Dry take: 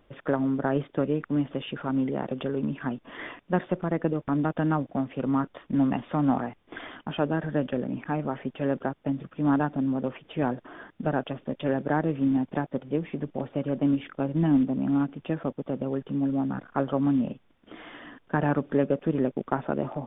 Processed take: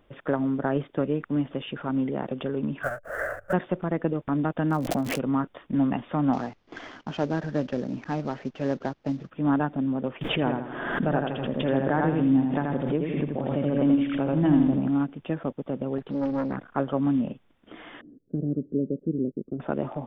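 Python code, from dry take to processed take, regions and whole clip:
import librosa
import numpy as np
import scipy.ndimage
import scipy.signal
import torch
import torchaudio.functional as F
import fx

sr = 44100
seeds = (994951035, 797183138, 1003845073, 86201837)

y = fx.chain(x, sr, fx.halfwave_hold(),
    fx.curve_eq(hz=(100.0, 240.0, 370.0, 580.0, 980.0, 1500.0, 2200.0, 4100.0, 7800.0), db=(0, -21, -11, 12, -12, 13, -13, -28, -11)),
    fx.band_squash(depth_pct=100), at=(2.83, 3.53))
y = fx.lowpass(y, sr, hz=2600.0, slope=12, at=(4.69, 5.18), fade=0.02)
y = fx.dmg_crackle(y, sr, seeds[0], per_s=130.0, level_db=-35.0, at=(4.69, 5.18), fade=0.02)
y = fx.pre_swell(y, sr, db_per_s=26.0, at=(4.69, 5.18), fade=0.02)
y = fx.chain(y, sr, fx.cvsd(bps=32000),
    fx.high_shelf(hz=3000.0, db=-4.5), at=(6.33, 9.3))
y = fx.chain(y, sr, fx.echo_feedback(ms=82, feedback_pct=40, wet_db=-4),
    fx.pre_swell(db_per_s=38.0), at=(10.21, 14.88))
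y = fx.chain(y, sr, fx.peak_eq(hz=1400.0, db=3.0, octaves=2.4),
    fx.doppler_dist(depth_ms=0.72), at=(15.98, 16.56))
y = fx.chain(y, sr, fx.cheby2_lowpass(hz=830.0, order=4, stop_db=40),
    fx.low_shelf(hz=64.0, db=-11.5), at=(18.01, 19.6))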